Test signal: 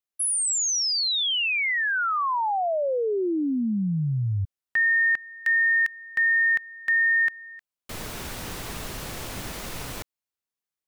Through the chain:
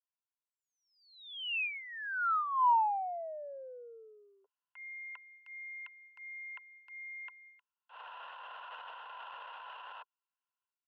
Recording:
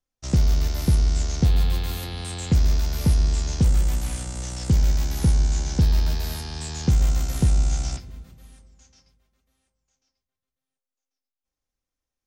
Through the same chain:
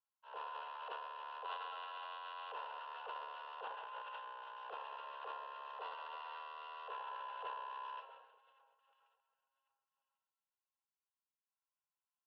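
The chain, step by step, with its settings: vowel filter a; mistuned SSB +290 Hz 170–3100 Hz; transient shaper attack -10 dB, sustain +10 dB; trim +1.5 dB

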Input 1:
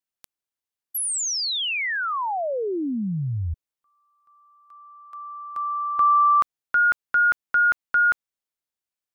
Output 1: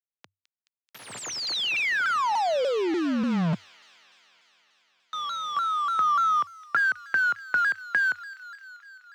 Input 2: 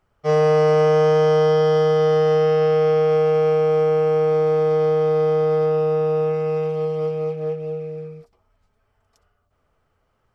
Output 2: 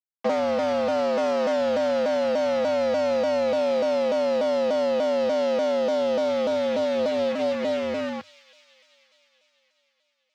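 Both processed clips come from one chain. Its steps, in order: dynamic bell 210 Hz, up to -6 dB, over -45 dBFS, Q 3.7; in parallel at -1.5 dB: peak limiter -18 dBFS; on the sum: compression 6:1, threshold -21 dBFS; bit crusher 5-bit; frequency shift +91 Hz; distance through air 180 m; on a send: feedback echo behind a high-pass 214 ms, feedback 75%, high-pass 2.8 kHz, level -12 dB; on the sum: vibrato with a chosen wave saw down 3.4 Hz, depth 160 cents

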